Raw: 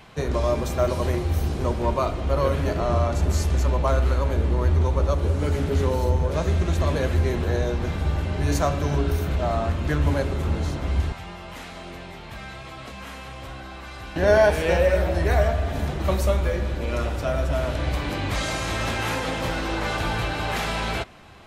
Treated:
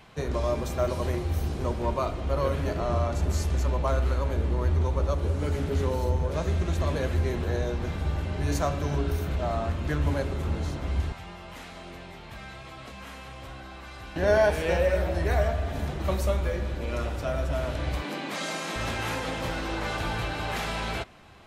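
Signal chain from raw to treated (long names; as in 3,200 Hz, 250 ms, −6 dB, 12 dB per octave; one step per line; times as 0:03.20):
0:18.02–0:18.76: Butterworth high-pass 160 Hz 48 dB per octave
level −4.5 dB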